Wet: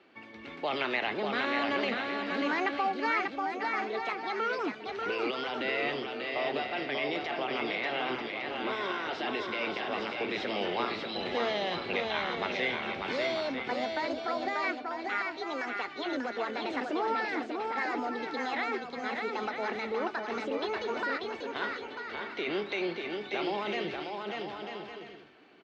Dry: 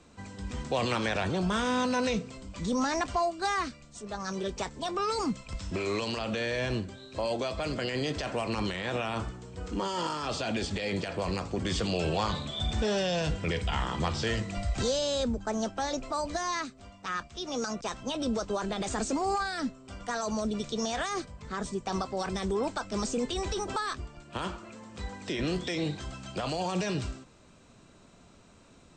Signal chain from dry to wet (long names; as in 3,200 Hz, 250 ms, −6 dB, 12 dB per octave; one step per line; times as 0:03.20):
change of speed 1.13×
loudspeaker in its box 350–3,700 Hz, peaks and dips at 370 Hz +5 dB, 540 Hz −4 dB, 1,100 Hz −3 dB, 2,200 Hz +7 dB
bouncing-ball delay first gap 590 ms, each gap 0.6×, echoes 5
level −1 dB